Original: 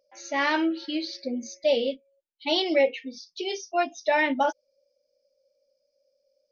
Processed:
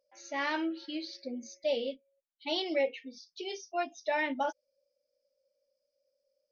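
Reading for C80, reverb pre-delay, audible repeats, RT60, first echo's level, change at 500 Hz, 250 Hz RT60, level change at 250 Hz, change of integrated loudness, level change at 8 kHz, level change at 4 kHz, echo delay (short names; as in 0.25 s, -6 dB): none, none, none, none, none, -8.0 dB, none, -8.5 dB, -8.0 dB, n/a, -8.0 dB, none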